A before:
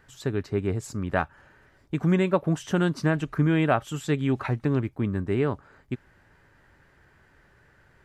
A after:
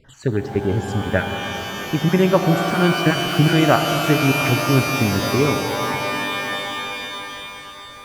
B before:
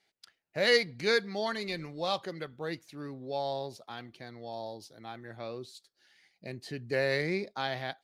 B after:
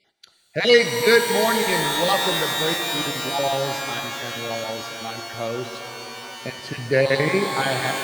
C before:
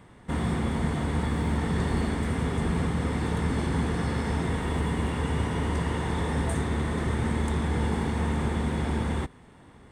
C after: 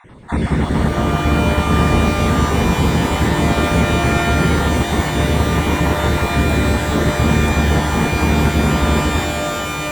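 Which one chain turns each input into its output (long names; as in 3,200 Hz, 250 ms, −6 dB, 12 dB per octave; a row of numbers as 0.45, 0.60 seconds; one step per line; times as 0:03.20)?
time-frequency cells dropped at random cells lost 28%
high-shelf EQ 6,600 Hz −9.5 dB
reverb with rising layers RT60 4 s, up +12 semitones, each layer −2 dB, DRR 6 dB
normalise the peak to −1.5 dBFS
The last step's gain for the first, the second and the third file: +6.5, +11.5, +11.0 decibels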